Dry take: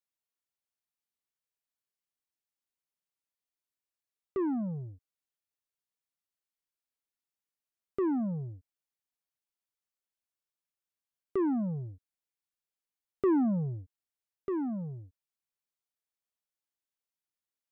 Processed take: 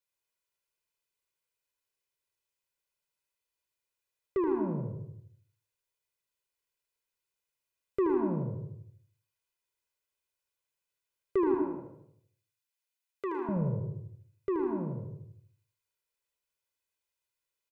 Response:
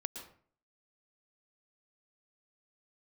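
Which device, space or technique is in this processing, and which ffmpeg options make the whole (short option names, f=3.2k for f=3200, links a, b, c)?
microphone above a desk: -filter_complex "[0:a]asettb=1/sr,asplit=3[a][b][c];[a]atrim=end=11.544[d];[b]atrim=start=11.54:end=13.49,asetpts=PTS-STARTPTS,afade=t=in:d=0.004:c=qsin,afade=t=out:st=1.946:d=0.004:c=qsin,highpass=f=1.3k:p=1[e];[c]atrim=start=13.486[f];[d][e]acrossfade=d=0.004:c1=hsin:c2=qsin[g];[g][f]acrossfade=d=0.004:c1=qsin:c2=hsin,aecho=1:1:2:0.67[h];[1:a]atrim=start_sample=2205[i];[h][i]afir=irnorm=-1:irlink=0,equalizer=f=2.4k:w=4.2:g=5,aecho=1:1:77|154|231|308|385:0.447|0.201|0.0905|0.0407|0.0183,volume=2.5dB"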